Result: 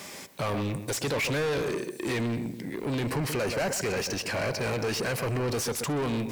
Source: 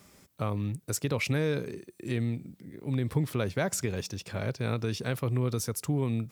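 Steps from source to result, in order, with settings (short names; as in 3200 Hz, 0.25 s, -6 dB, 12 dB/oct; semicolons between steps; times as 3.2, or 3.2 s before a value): bell 1300 Hz -10 dB 0.24 oct; darkening echo 0.129 s, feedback 31%, low-pass 1600 Hz, level -13.5 dB; overdrive pedal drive 33 dB, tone 5600 Hz, clips at -15 dBFS; 3.07–5.62 notch 3500 Hz, Q 5.4; gain -6 dB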